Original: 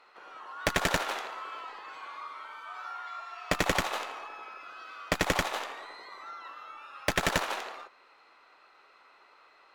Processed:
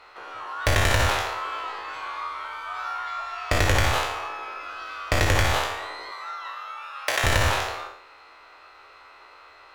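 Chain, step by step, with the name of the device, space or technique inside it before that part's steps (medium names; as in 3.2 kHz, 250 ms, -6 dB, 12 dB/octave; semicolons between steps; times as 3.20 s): spectral sustain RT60 0.61 s; car stereo with a boomy subwoofer (resonant low shelf 130 Hz +9.5 dB, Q 3; peak limiter -18.5 dBFS, peak gain reduction 10 dB); 6.11–7.24 s: high-pass 600 Hz 12 dB/octave; trim +8 dB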